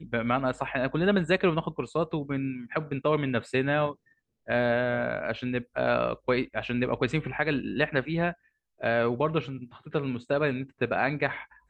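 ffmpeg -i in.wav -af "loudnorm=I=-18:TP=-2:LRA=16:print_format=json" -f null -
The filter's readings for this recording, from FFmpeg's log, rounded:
"input_i" : "-28.3",
"input_tp" : "-10.1",
"input_lra" : "1.1",
"input_thresh" : "-38.6",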